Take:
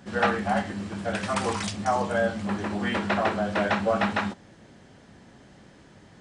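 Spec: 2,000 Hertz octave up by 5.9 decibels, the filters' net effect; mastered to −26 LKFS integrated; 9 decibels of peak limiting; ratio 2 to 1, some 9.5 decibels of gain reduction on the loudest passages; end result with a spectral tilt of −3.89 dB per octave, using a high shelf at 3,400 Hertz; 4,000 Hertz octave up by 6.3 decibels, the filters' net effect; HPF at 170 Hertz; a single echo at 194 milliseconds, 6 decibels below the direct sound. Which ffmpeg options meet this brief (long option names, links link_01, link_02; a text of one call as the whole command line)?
ffmpeg -i in.wav -af "highpass=170,equalizer=frequency=2000:width_type=o:gain=6,highshelf=frequency=3400:gain=3,equalizer=frequency=4000:width_type=o:gain=4,acompressor=threshold=-32dB:ratio=2,alimiter=limit=-22dB:level=0:latency=1,aecho=1:1:194:0.501,volume=5.5dB" out.wav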